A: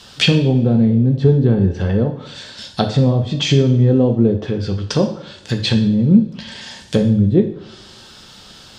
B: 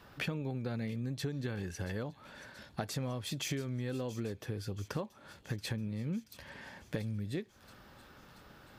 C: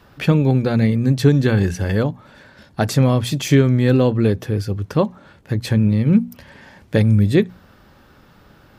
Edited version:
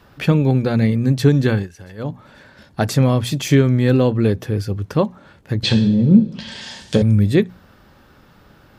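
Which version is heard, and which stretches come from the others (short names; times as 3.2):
C
1.6–2.05 from B, crossfade 0.16 s
5.63–7.02 from A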